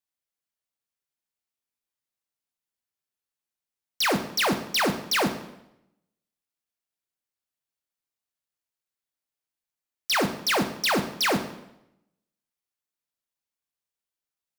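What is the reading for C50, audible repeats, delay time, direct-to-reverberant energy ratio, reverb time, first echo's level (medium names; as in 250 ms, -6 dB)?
10.0 dB, no echo, no echo, 7.0 dB, 0.85 s, no echo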